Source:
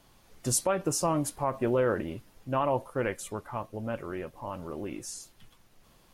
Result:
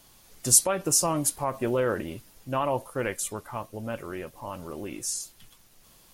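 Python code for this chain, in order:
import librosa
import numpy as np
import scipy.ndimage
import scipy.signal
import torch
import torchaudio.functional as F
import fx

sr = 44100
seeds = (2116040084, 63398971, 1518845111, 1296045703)

y = fx.high_shelf(x, sr, hz=3800.0, db=12.0)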